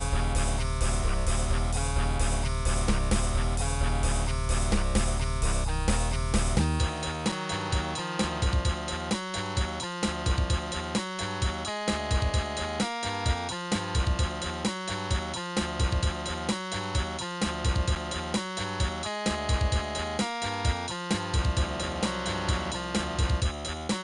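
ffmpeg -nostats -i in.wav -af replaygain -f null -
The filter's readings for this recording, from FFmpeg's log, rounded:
track_gain = +12.1 dB
track_peak = 0.182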